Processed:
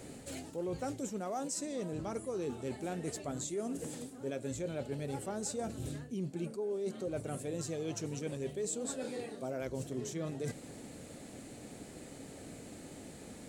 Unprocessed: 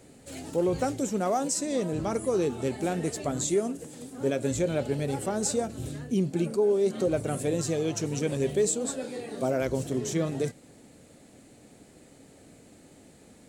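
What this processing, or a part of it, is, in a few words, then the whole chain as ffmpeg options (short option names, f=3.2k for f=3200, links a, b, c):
compression on the reversed sound: -af "areverse,acompressor=threshold=-43dB:ratio=4,areverse,volume=4.5dB"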